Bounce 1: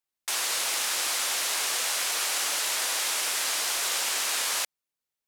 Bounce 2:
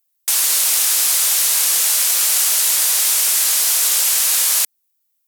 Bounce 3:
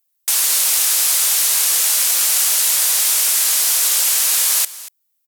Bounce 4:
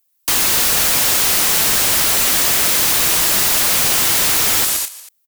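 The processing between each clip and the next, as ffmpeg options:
-af "highpass=f=250:w=0.5412,highpass=f=250:w=1.3066,aemphasis=mode=production:type=75fm,volume=1.5dB"
-af "aecho=1:1:235:0.133"
-af "aecho=1:1:116.6|204.1:0.398|0.355,aeval=exprs='(mod(5.01*val(0)+1,2)-1)/5.01':c=same,volume=4dB"

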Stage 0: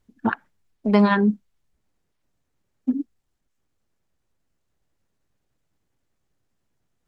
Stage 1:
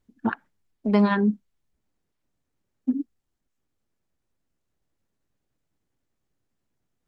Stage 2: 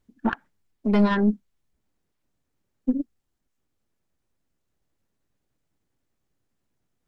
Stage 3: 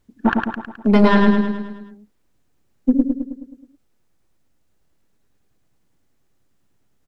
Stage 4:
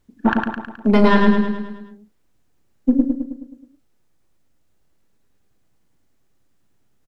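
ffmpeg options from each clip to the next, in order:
-af "equalizer=f=270:w=1.2:g=3,volume=-4.5dB"
-af "aeval=exprs='(tanh(4.47*val(0)+0.5)-tanh(0.5))/4.47':c=same,volume=3.5dB"
-af "aecho=1:1:106|212|318|424|530|636|742:0.631|0.347|0.191|0.105|0.0577|0.0318|0.0175,volume=7dB"
-filter_complex "[0:a]asplit=2[a][b];[b]adelay=37,volume=-11.5dB[c];[a][c]amix=inputs=2:normalize=0"

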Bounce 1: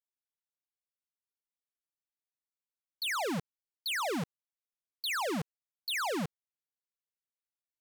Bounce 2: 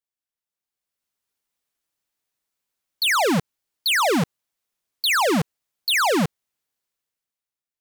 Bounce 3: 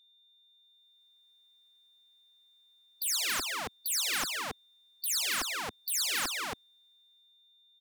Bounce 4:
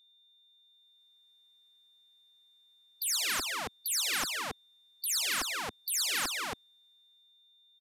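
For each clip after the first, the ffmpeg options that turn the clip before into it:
-af "dynaudnorm=f=160:g=11:m=12dB,volume=1.5dB"
-af "aecho=1:1:275:0.473,afftfilt=real='re*lt(hypot(re,im),0.178)':imag='im*lt(hypot(re,im),0.178)':win_size=1024:overlap=0.75,aeval=exprs='val(0)+0.001*sin(2*PI*3600*n/s)':c=same,volume=-2dB"
-af "aresample=32000,aresample=44100"

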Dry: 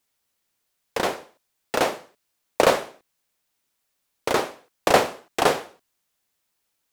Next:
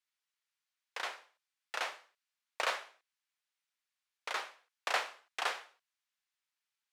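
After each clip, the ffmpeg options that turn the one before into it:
-af "highpass=1.4k,aemphasis=mode=reproduction:type=50fm,volume=-7dB"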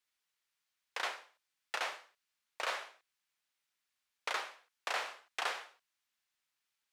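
-af "alimiter=level_in=3dB:limit=-24dB:level=0:latency=1:release=166,volume=-3dB,volume=3.5dB"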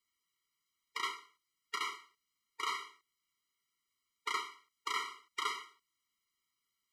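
-af "afftfilt=real='re*eq(mod(floor(b*sr/1024/470),2),0)':imag='im*eq(mod(floor(b*sr/1024/470),2),0)':win_size=1024:overlap=0.75,volume=3.5dB"

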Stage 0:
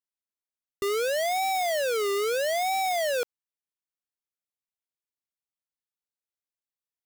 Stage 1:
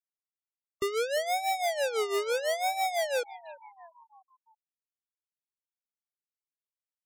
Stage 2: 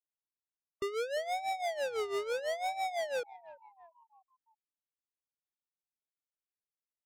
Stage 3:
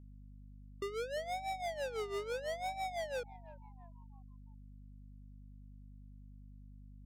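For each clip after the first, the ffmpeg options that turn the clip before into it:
-filter_complex "[0:a]asplit=6[a][b][c][d][e][f];[b]adelay=343,afreqshift=85,volume=-17dB[g];[c]adelay=686,afreqshift=170,volume=-22.2dB[h];[d]adelay=1029,afreqshift=255,volume=-27.4dB[i];[e]adelay=1372,afreqshift=340,volume=-32.6dB[j];[f]adelay=1715,afreqshift=425,volume=-37.8dB[k];[a][g][h][i][j][k]amix=inputs=6:normalize=0,tremolo=f=6:d=0.7,afftfilt=real='re*gte(hypot(re,im),0.01)':imag='im*gte(hypot(re,im),0.01)':win_size=1024:overlap=0.75"
-af "adynamicsmooth=sensitivity=4:basefreq=1.5k,volume=-5dB"
-af "aeval=exprs='val(0)+0.00398*(sin(2*PI*50*n/s)+sin(2*PI*2*50*n/s)/2+sin(2*PI*3*50*n/s)/3+sin(2*PI*4*50*n/s)/4+sin(2*PI*5*50*n/s)/5)':c=same,volume=-4.5dB"

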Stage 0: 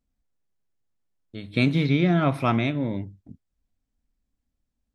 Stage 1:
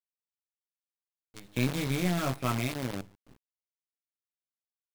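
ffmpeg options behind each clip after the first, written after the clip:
-filter_complex "[0:a]asplit=2[a][b];[b]adelay=16,volume=-3.5dB[c];[a][c]amix=inputs=2:normalize=0,acrusher=bits=5:dc=4:mix=0:aa=0.000001,aeval=exprs='(tanh(3.98*val(0)+0.6)-tanh(0.6))/3.98':c=same,volume=-7.5dB"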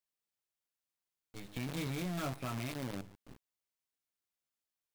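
-af "acompressor=threshold=-36dB:ratio=5,volume=35.5dB,asoftclip=hard,volume=-35.5dB,volume=3dB"

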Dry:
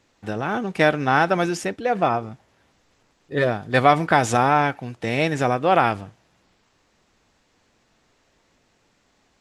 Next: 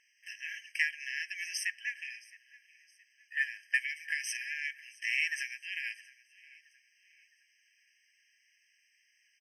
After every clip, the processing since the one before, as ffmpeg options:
-af "acompressor=threshold=-19dB:ratio=5,aecho=1:1:667|1334|2001:0.0794|0.0318|0.0127,afftfilt=real='re*eq(mod(floor(b*sr/1024/1600),2),1)':imag='im*eq(mod(floor(b*sr/1024/1600),2),1)':win_size=1024:overlap=0.75"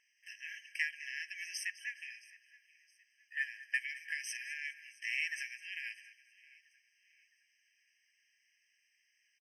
-af "aecho=1:1:207|414|621:0.141|0.0452|0.0145,volume=-5dB"

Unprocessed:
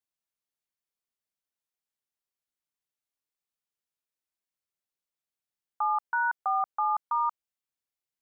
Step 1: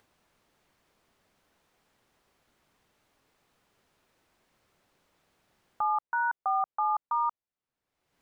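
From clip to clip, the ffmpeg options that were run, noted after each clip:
-filter_complex "[0:a]asplit=2[a][b];[b]acompressor=mode=upward:threshold=-31dB:ratio=2.5,volume=2dB[c];[a][c]amix=inputs=2:normalize=0,lowpass=f=1.1k:p=1,volume=-5dB"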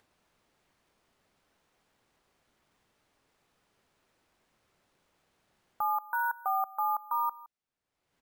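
-af "aecho=1:1:166:0.1,acrusher=samples=3:mix=1:aa=0.000001,volume=-2dB"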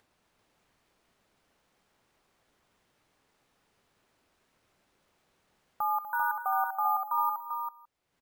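-af "aecho=1:1:66|109|245|393:0.106|0.126|0.251|0.531"

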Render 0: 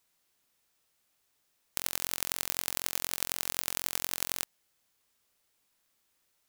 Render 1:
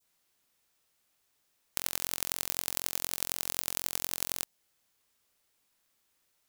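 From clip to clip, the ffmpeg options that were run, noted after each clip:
-af "adynamicequalizer=threshold=0.00224:dfrequency=1700:dqfactor=0.75:tfrequency=1700:tqfactor=0.75:attack=5:release=100:ratio=0.375:range=2:mode=cutabove:tftype=bell"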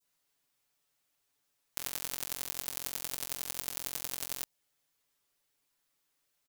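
-af "aecho=1:1:7:0.87,volume=-6.5dB"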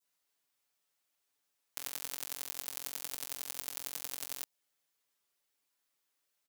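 -af "lowshelf=f=170:g=-10.5,volume=-3dB"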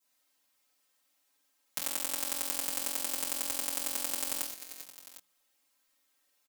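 -filter_complex "[0:a]bandreject=f=60:t=h:w=6,bandreject=f=120:t=h:w=6,bandreject=f=180:t=h:w=6,aecho=1:1:3.8:0.64,asplit=2[a][b];[b]aecho=0:1:49|91|397|754:0.447|0.376|0.266|0.168[c];[a][c]amix=inputs=2:normalize=0,volume=4.5dB"

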